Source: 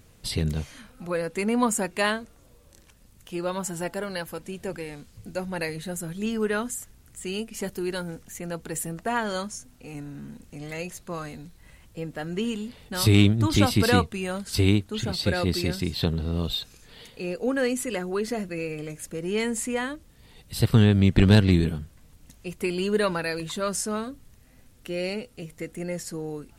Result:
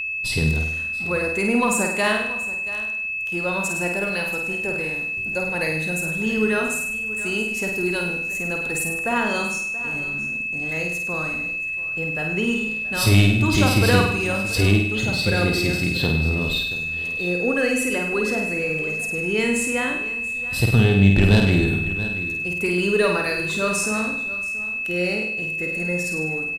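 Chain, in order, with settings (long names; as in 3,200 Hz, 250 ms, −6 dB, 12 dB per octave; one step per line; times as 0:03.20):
single-tap delay 680 ms −16 dB
leveller curve on the samples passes 1
on a send: flutter between parallel walls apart 8.7 metres, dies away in 0.69 s
on the sum: steady tone 2,600 Hz −23 dBFS
level −1.5 dB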